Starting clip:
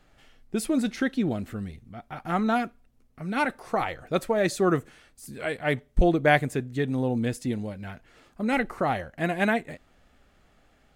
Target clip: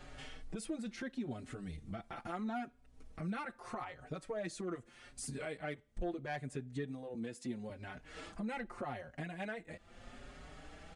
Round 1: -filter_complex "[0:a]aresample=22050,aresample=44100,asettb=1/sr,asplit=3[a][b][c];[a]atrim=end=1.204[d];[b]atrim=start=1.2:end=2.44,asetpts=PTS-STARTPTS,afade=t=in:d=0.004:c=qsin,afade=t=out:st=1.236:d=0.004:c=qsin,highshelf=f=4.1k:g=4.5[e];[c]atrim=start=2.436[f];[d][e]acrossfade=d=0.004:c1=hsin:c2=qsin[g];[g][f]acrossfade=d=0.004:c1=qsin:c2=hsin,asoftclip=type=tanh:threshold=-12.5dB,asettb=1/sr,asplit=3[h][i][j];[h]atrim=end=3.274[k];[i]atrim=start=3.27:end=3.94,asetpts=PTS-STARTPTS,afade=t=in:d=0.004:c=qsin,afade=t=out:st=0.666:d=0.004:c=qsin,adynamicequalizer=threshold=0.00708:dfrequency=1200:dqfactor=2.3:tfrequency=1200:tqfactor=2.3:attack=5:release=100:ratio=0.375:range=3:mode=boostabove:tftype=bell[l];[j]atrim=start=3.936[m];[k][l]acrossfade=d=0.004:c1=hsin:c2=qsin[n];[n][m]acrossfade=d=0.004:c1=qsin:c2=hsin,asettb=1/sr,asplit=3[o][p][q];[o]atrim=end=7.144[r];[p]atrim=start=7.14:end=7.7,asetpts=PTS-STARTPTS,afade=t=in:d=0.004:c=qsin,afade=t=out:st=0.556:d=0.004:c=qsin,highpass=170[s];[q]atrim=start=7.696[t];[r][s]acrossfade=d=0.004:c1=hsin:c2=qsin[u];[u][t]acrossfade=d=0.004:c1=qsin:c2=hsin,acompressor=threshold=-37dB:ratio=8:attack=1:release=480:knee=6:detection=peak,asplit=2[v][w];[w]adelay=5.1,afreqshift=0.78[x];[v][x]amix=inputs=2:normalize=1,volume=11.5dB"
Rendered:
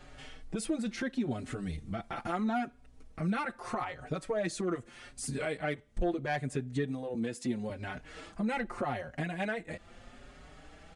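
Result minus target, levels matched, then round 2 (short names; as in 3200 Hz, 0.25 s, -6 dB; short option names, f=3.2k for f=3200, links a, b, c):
compressor: peak gain reduction -8 dB
-filter_complex "[0:a]aresample=22050,aresample=44100,asettb=1/sr,asplit=3[a][b][c];[a]atrim=end=1.204[d];[b]atrim=start=1.2:end=2.44,asetpts=PTS-STARTPTS,afade=t=in:d=0.004:c=qsin,afade=t=out:st=1.236:d=0.004:c=qsin,highshelf=f=4.1k:g=4.5[e];[c]atrim=start=2.436[f];[d][e]acrossfade=d=0.004:c1=hsin:c2=qsin[g];[g][f]acrossfade=d=0.004:c1=qsin:c2=hsin,asoftclip=type=tanh:threshold=-12.5dB,asettb=1/sr,asplit=3[h][i][j];[h]atrim=end=3.274[k];[i]atrim=start=3.27:end=3.94,asetpts=PTS-STARTPTS,afade=t=in:d=0.004:c=qsin,afade=t=out:st=0.666:d=0.004:c=qsin,adynamicequalizer=threshold=0.00708:dfrequency=1200:dqfactor=2.3:tfrequency=1200:tqfactor=2.3:attack=5:release=100:ratio=0.375:range=3:mode=boostabove:tftype=bell[l];[j]atrim=start=3.936[m];[k][l]acrossfade=d=0.004:c1=hsin:c2=qsin[n];[n][m]acrossfade=d=0.004:c1=qsin:c2=hsin,asettb=1/sr,asplit=3[o][p][q];[o]atrim=end=7.144[r];[p]atrim=start=7.14:end=7.7,asetpts=PTS-STARTPTS,afade=t=in:d=0.004:c=qsin,afade=t=out:st=0.556:d=0.004:c=qsin,highpass=170[s];[q]atrim=start=7.696[t];[r][s]acrossfade=d=0.004:c1=hsin:c2=qsin[u];[u][t]acrossfade=d=0.004:c1=qsin:c2=hsin,acompressor=threshold=-46dB:ratio=8:attack=1:release=480:knee=6:detection=peak,asplit=2[v][w];[w]adelay=5.1,afreqshift=0.78[x];[v][x]amix=inputs=2:normalize=1,volume=11.5dB"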